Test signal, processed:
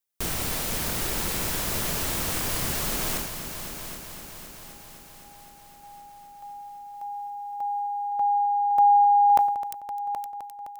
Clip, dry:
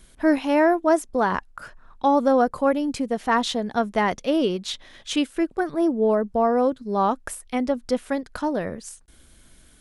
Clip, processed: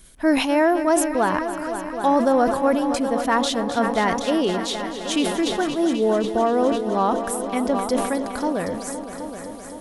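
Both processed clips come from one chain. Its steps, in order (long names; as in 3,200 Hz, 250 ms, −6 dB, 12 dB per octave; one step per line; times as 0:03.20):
high-shelf EQ 7,400 Hz +8.5 dB
echo machine with several playback heads 258 ms, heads all three, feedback 61%, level −14 dB
level that may fall only so fast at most 58 dB per second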